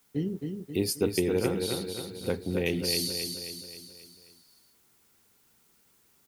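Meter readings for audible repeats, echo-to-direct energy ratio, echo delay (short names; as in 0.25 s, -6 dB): 6, -3.5 dB, 0.267 s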